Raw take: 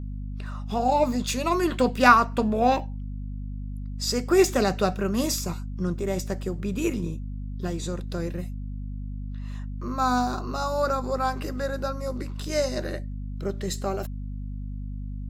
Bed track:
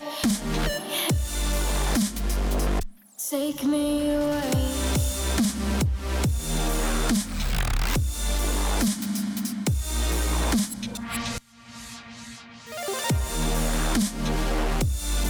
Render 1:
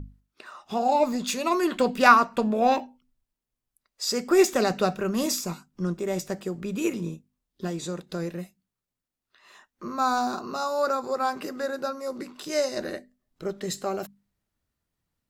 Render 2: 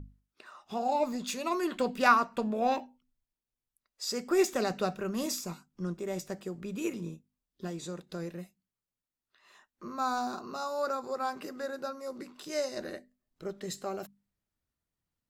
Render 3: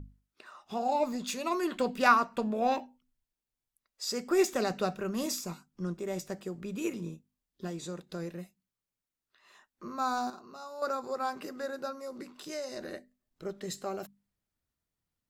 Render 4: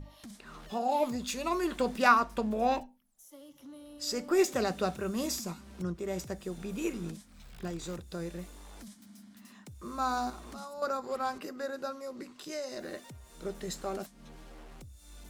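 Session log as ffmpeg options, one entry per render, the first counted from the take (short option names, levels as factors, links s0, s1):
-af "bandreject=f=50:t=h:w=6,bandreject=f=100:t=h:w=6,bandreject=f=150:t=h:w=6,bandreject=f=200:t=h:w=6,bandreject=f=250:t=h:w=6"
-af "volume=0.447"
-filter_complex "[0:a]asettb=1/sr,asplit=3[s0][s1][s2];[s0]atrim=end=11.924[s3];[s1]atrim=start=11.92:end=12.91,asetpts=PTS-STARTPTS,afade=t=in:d=0.004:c=qsin,afade=t=out:st=0.986:d=0.004:c=qsin,acompressor=threshold=0.0158:ratio=2.5:attack=3.2:release=140:knee=1:detection=peak[s4];[s2]atrim=start=12.906[s5];[s3][s4]acrossfade=d=0.004:c1=hsin:c2=qsin[s6];[s6][s5]acrossfade=d=0.004:c1=qsin:c2=hsin,asplit=3[s7][s8][s9];[s7]atrim=end=10.302[s10];[s8]atrim=start=10.298:end=10.822,asetpts=PTS-STARTPTS,volume=0.355[s11];[s9]atrim=start=10.818[s12];[s10][s11]acrossfade=d=0.004:c1=hsin:c2=hsin[s13];[s13][s12]acrossfade=d=0.004:c1=hsin:c2=hsin"
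-filter_complex "[1:a]volume=0.0531[s0];[0:a][s0]amix=inputs=2:normalize=0"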